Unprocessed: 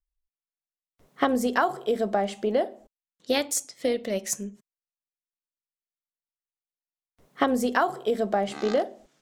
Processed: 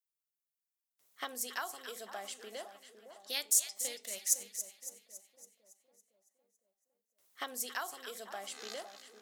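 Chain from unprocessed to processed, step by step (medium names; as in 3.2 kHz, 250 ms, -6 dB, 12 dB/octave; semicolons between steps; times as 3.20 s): differentiator; two-band feedback delay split 1.2 kHz, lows 508 ms, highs 279 ms, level -10 dB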